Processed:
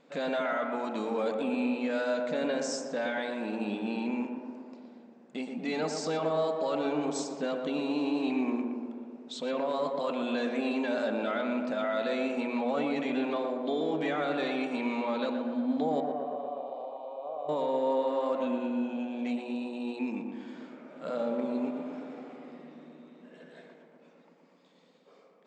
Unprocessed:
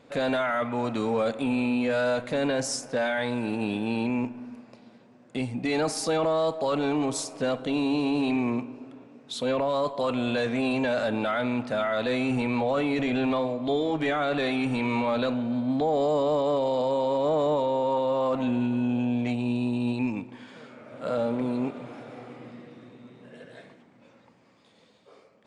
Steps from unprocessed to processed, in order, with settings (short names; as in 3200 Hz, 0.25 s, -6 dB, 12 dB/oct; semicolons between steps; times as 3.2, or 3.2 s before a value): 16–17.49 vowel filter a; tape echo 0.119 s, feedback 83%, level -3 dB, low-pass 1400 Hz; FFT band-pass 140–8300 Hz; gain -6 dB